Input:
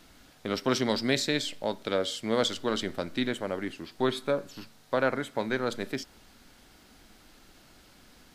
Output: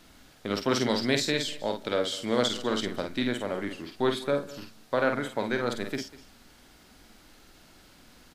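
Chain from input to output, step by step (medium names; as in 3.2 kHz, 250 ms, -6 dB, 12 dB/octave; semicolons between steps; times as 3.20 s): doubling 49 ms -6 dB; delay 197 ms -19 dB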